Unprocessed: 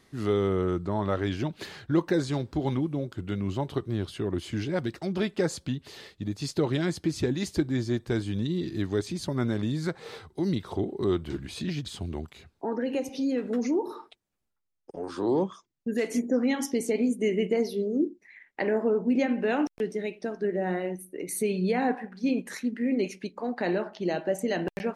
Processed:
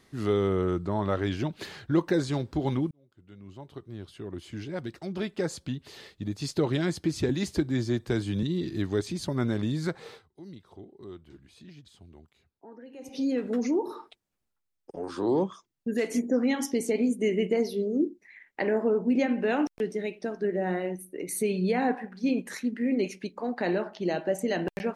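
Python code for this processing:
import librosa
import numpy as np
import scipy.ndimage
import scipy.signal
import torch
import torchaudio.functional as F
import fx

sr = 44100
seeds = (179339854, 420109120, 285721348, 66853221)

y = fx.band_squash(x, sr, depth_pct=40, at=(7.29, 8.43))
y = fx.edit(y, sr, fx.fade_in_span(start_s=2.91, length_s=3.66),
    fx.fade_down_up(start_s=10.0, length_s=3.21, db=-17.5, fade_s=0.23), tone=tone)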